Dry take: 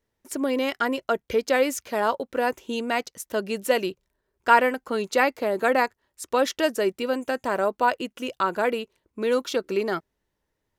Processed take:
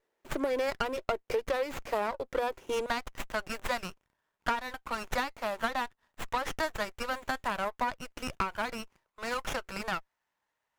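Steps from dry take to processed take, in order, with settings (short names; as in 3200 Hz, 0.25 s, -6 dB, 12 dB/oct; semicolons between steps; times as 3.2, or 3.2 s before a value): HPF 340 Hz 24 dB/oct, from 2.86 s 760 Hz; compressor 16:1, threshold -29 dBFS, peak gain reduction 18 dB; running maximum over 9 samples; gain +2.5 dB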